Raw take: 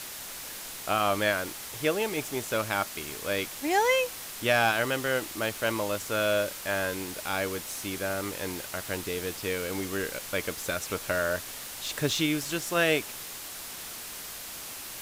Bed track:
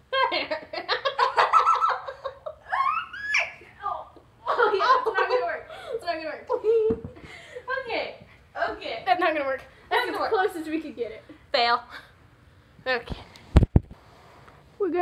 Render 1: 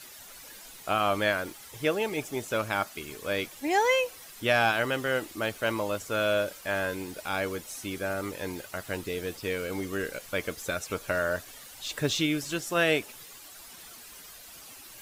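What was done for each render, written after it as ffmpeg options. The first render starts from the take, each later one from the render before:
ffmpeg -i in.wav -af "afftdn=noise_reduction=11:noise_floor=-41" out.wav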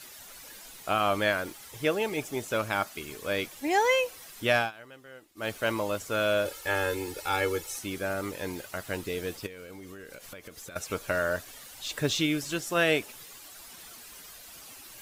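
ffmpeg -i in.wav -filter_complex "[0:a]asettb=1/sr,asplit=3[link_01][link_02][link_03];[link_01]atrim=end=6.454[link_04];[link_02]atrim=start=6.45:end=7.79,asetpts=PTS-STARTPTS,afade=type=in:duration=0.004:curve=qsin,afade=type=out:start_time=1.336:duration=0.004:curve=qsin,aecho=1:1:2.3:0.99,atrim=end_sample=59094[link_05];[link_03]atrim=start=7.786[link_06];[link_04][link_05]acrossfade=duration=0.004:curve1=hsin:curve2=qsin[link_07];[link_07][link_06]acrossfade=duration=0.004:curve1=qsin:curve2=hsin,asettb=1/sr,asplit=3[link_08][link_09][link_10];[link_08]atrim=end=9.464[link_11];[link_09]atrim=start=9.46:end=10.76,asetpts=PTS-STARTPTS,afade=type=in:duration=0.004:curve=qsin,afade=type=out:start_time=1.296:duration=0.004:curve=qsin,acompressor=threshold=-40dB:ratio=16:attack=3.2:release=140:knee=1:detection=peak[link_12];[link_10]atrim=start=10.756[link_13];[link_11][link_12]acrossfade=duration=0.004:curve1=hsin:curve2=qsin[link_14];[link_14][link_13]acrossfade=duration=0.004:curve1=qsin:curve2=hsin,asplit=3[link_15][link_16][link_17];[link_15]atrim=end=4.71,asetpts=PTS-STARTPTS,afade=type=out:start_time=4.56:duration=0.15:silence=0.0944061[link_18];[link_16]atrim=start=4.71:end=5.35,asetpts=PTS-STARTPTS,volume=-20.5dB[link_19];[link_17]atrim=start=5.35,asetpts=PTS-STARTPTS,afade=type=in:duration=0.15:silence=0.0944061[link_20];[link_18][link_19][link_20]concat=n=3:v=0:a=1" out.wav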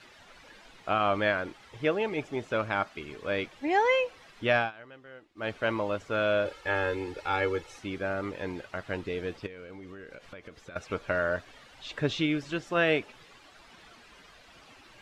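ffmpeg -i in.wav -af "lowpass=3000" out.wav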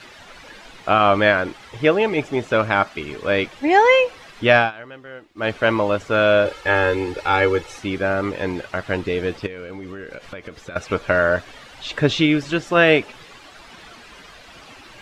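ffmpeg -i in.wav -af "volume=11dB" out.wav

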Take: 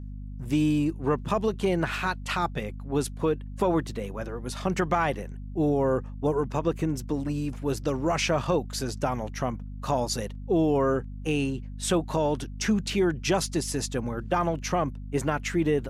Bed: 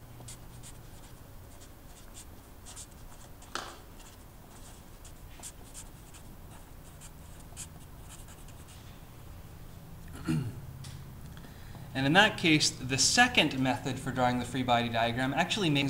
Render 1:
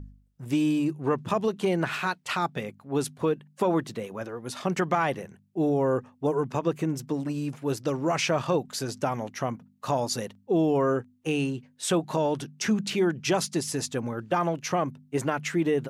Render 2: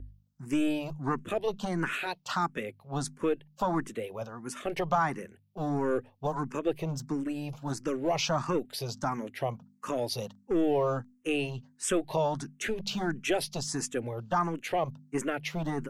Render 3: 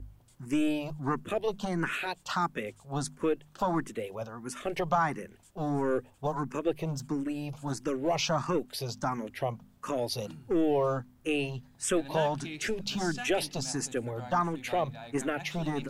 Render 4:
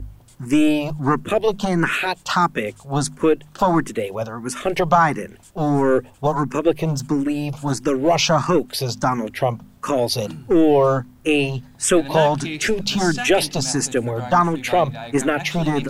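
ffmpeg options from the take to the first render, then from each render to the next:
ffmpeg -i in.wav -af "bandreject=frequency=50:width_type=h:width=4,bandreject=frequency=100:width_type=h:width=4,bandreject=frequency=150:width_type=h:width=4,bandreject=frequency=200:width_type=h:width=4,bandreject=frequency=250:width_type=h:width=4" out.wav
ffmpeg -i in.wav -filter_complex "[0:a]acrossover=split=660|2900[link_01][link_02][link_03];[link_01]aeval=exprs='clip(val(0),-1,0.0316)':channel_layout=same[link_04];[link_04][link_02][link_03]amix=inputs=3:normalize=0,asplit=2[link_05][link_06];[link_06]afreqshift=1.5[link_07];[link_05][link_07]amix=inputs=2:normalize=1" out.wav
ffmpeg -i in.wav -i bed.wav -filter_complex "[1:a]volume=-17dB[link_01];[0:a][link_01]amix=inputs=2:normalize=0" out.wav
ffmpeg -i in.wav -af "volume=12dB" out.wav

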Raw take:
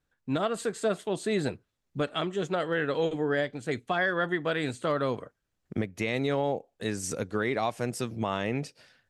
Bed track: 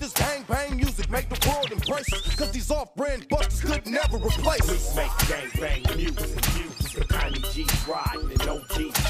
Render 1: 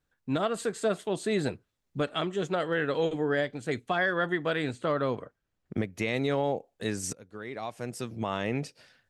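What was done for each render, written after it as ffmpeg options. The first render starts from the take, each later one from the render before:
ffmpeg -i in.wav -filter_complex "[0:a]asettb=1/sr,asplit=3[link_01][link_02][link_03];[link_01]atrim=end=4.624[link_04];[link_02]atrim=start=4.62:end=5.77,asetpts=PTS-STARTPTS,afade=type=in:duration=0.004:curve=qsin,afade=type=out:start_time=1.146:duration=0.004:curve=qsin,lowpass=frequency=3700:poles=1[link_05];[link_03]atrim=start=5.766[link_06];[link_04][link_05]acrossfade=duration=0.004:curve1=hsin:curve2=qsin[link_07];[link_07][link_06]acrossfade=duration=0.004:curve1=qsin:curve2=hsin,asplit=2[link_08][link_09];[link_08]atrim=end=7.13,asetpts=PTS-STARTPTS,afade=type=out:start_time=7.126:duration=0.004:curve=hsin:silence=0.0668344[link_10];[link_09]atrim=start=7.13,asetpts=PTS-STARTPTS,afade=type=in:duration=1.4:silence=0.0668344[link_11];[link_10][link_11]concat=n=2:v=0:a=1" out.wav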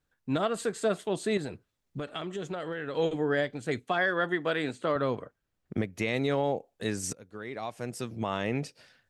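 ffmpeg -i in.wav -filter_complex "[0:a]asettb=1/sr,asplit=3[link_01][link_02][link_03];[link_01]atrim=end=1.374[link_04];[link_02]atrim=start=1.37:end=2.97,asetpts=PTS-STARTPTS,afade=type=in:duration=0.004:curve=qsin,afade=type=out:start_time=1.596:duration=0.004:curve=qsin,acompressor=threshold=-31dB:ratio=6:attack=3.2:release=140:knee=1:detection=peak[link_05];[link_03]atrim=start=2.966[link_06];[link_04][link_05]acrossfade=duration=0.004:curve1=hsin:curve2=qsin[link_07];[link_07][link_06]acrossfade=duration=0.004:curve1=qsin:curve2=hsin,asettb=1/sr,asplit=3[link_08][link_09][link_10];[link_08]atrim=end=3.834[link_11];[link_09]atrim=start=3.83:end=4.96,asetpts=PTS-STARTPTS,afade=type=in:duration=0.004:curve=qsin,afade=type=out:start_time=1.126:duration=0.004:curve=qsin,highpass=170[link_12];[link_10]atrim=start=4.956[link_13];[link_11][link_12]acrossfade=duration=0.004:curve1=hsin:curve2=qsin[link_14];[link_14][link_13]acrossfade=duration=0.004:curve1=qsin:curve2=hsin" out.wav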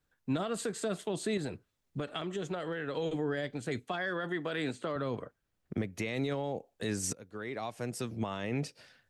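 ffmpeg -i in.wav -filter_complex "[0:a]alimiter=limit=-22dB:level=0:latency=1:release=21,acrossover=split=290|3000[link_01][link_02][link_03];[link_02]acompressor=threshold=-35dB:ratio=2.5[link_04];[link_01][link_04][link_03]amix=inputs=3:normalize=0" out.wav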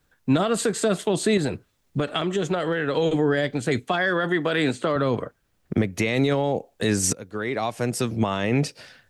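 ffmpeg -i in.wav -af "volume=12dB" out.wav

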